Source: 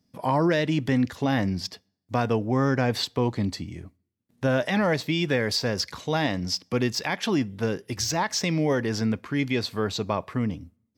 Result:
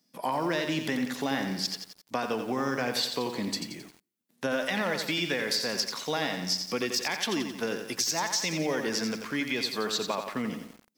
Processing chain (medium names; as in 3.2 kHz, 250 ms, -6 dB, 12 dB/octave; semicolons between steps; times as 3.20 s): high-pass 160 Hz 24 dB/octave; tilt EQ +2 dB/octave; compression, threshold -26 dBFS, peak gain reduction 8.5 dB; bit-crushed delay 88 ms, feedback 55%, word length 8-bit, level -6.5 dB